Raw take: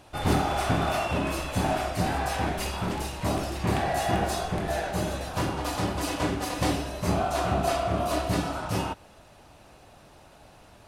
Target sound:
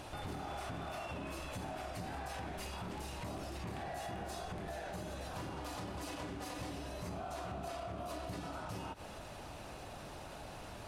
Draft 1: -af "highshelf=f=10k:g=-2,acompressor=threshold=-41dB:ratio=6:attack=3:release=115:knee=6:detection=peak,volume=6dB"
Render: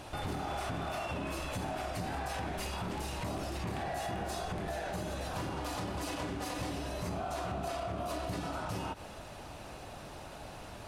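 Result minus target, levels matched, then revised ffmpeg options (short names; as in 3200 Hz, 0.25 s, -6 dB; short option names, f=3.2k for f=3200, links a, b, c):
compressor: peak gain reduction -6 dB
-af "highshelf=f=10k:g=-2,acompressor=threshold=-48dB:ratio=6:attack=3:release=115:knee=6:detection=peak,volume=6dB"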